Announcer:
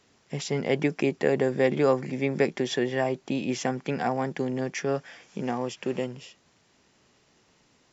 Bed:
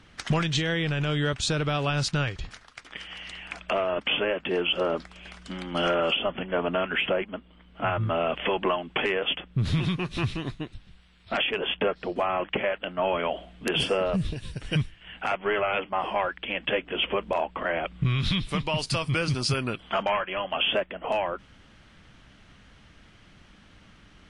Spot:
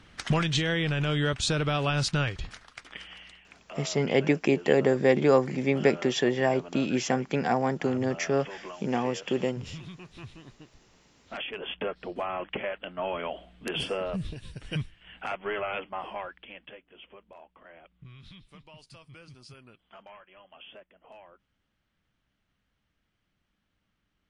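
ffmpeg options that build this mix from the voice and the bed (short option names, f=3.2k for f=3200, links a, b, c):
-filter_complex "[0:a]adelay=3450,volume=1.5dB[a];[1:a]volume=10dB,afade=t=out:st=2.77:d=0.66:silence=0.158489,afade=t=in:st=10.9:d=1.09:silence=0.298538,afade=t=out:st=15.73:d=1.06:silence=0.125893[b];[a][b]amix=inputs=2:normalize=0"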